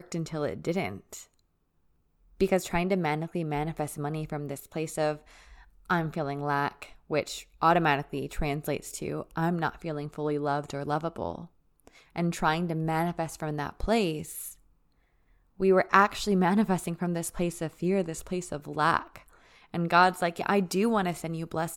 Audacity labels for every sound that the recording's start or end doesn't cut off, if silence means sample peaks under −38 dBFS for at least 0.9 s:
2.410000	14.510000	sound